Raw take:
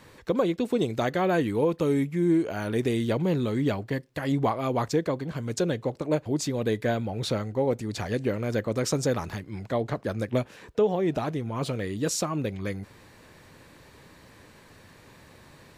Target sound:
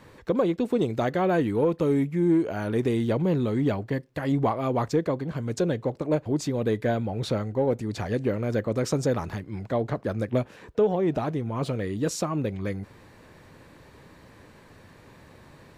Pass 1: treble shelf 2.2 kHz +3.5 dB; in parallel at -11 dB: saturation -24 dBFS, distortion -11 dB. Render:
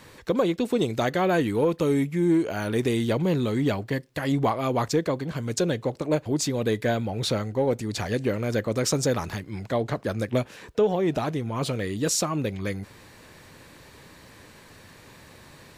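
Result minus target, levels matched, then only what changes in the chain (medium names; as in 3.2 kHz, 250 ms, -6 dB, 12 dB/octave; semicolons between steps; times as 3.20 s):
4 kHz band +7.0 dB
change: treble shelf 2.2 kHz -7 dB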